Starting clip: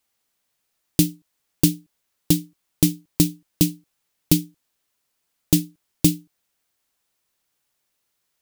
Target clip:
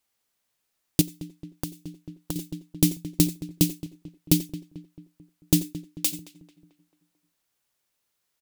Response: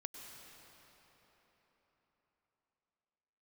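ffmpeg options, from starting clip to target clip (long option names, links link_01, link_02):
-filter_complex "[0:a]asplit=3[link_01][link_02][link_03];[link_01]afade=type=out:start_time=5.63:duration=0.02[link_04];[link_02]highpass=830,afade=type=in:start_time=5.63:duration=0.02,afade=type=out:start_time=6.12:duration=0.02[link_05];[link_03]afade=type=in:start_time=6.12:duration=0.02[link_06];[link_04][link_05][link_06]amix=inputs=3:normalize=0,asplit=2[link_07][link_08];[link_08]adelay=221,lowpass=frequency=2100:poles=1,volume=-15dB,asplit=2[link_09][link_10];[link_10]adelay=221,lowpass=frequency=2100:poles=1,volume=0.53,asplit=2[link_11][link_12];[link_12]adelay=221,lowpass=frequency=2100:poles=1,volume=0.53,asplit=2[link_13][link_14];[link_14]adelay=221,lowpass=frequency=2100:poles=1,volume=0.53,asplit=2[link_15][link_16];[link_16]adelay=221,lowpass=frequency=2100:poles=1,volume=0.53[link_17];[link_07][link_09][link_11][link_13][link_15][link_17]amix=inputs=6:normalize=0[link_18];[1:a]atrim=start_sample=2205,afade=type=out:start_time=0.15:duration=0.01,atrim=end_sample=7056,asetrate=48510,aresample=44100[link_19];[link_18][link_19]afir=irnorm=-1:irlink=0,asettb=1/sr,asplit=3[link_20][link_21][link_22];[link_20]atrim=end=1.014[link_23];[link_21]atrim=start=1.01:end=2.36,asetpts=PTS-STARTPTS,afade=type=in:duration=0.004:curve=qsin,afade=type=out:start_time=1.346:duration=0.004:curve=qsin,acompressor=threshold=-32dB:ratio=20[link_24];[link_22]atrim=start=2.356[link_25];[link_23][link_24]acrossfade=duration=0.004:curve1=hsin:curve2=qsin[link_26];[link_26][link_25]acrossfade=duration=0.004:curve1=qsin:curve2=hsin,volume=3dB"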